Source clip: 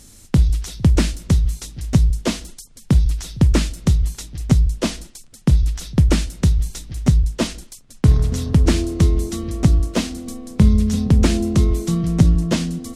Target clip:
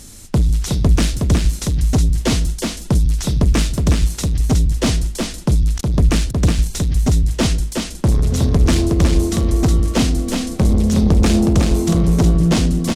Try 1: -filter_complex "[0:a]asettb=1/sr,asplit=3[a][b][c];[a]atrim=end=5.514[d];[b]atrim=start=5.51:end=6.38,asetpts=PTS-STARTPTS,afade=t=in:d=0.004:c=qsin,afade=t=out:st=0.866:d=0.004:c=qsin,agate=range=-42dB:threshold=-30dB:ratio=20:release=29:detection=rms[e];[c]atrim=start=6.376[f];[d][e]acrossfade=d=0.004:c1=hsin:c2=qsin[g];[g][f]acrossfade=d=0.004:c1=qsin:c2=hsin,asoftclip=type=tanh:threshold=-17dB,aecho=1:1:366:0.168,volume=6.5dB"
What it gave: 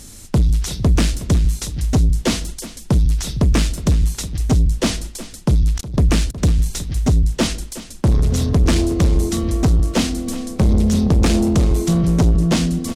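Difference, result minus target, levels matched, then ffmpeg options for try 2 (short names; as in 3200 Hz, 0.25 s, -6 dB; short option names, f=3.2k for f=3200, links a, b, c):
echo-to-direct -11.5 dB
-filter_complex "[0:a]asettb=1/sr,asplit=3[a][b][c];[a]atrim=end=5.514[d];[b]atrim=start=5.51:end=6.38,asetpts=PTS-STARTPTS,afade=t=in:d=0.004:c=qsin,afade=t=out:st=0.866:d=0.004:c=qsin,agate=range=-42dB:threshold=-30dB:ratio=20:release=29:detection=rms[e];[c]atrim=start=6.376[f];[d][e]acrossfade=d=0.004:c1=hsin:c2=qsin[g];[g][f]acrossfade=d=0.004:c1=qsin:c2=hsin,asoftclip=type=tanh:threshold=-17dB,aecho=1:1:366:0.631,volume=6.5dB"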